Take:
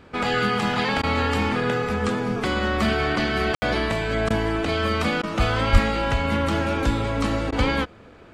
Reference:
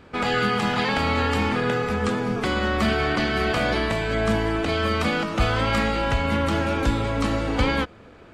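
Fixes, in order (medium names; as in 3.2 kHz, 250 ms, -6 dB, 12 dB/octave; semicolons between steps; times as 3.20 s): de-plosive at 5.72 s; room tone fill 3.55–3.62 s; interpolate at 1.02/4.29/5.22/7.51 s, 12 ms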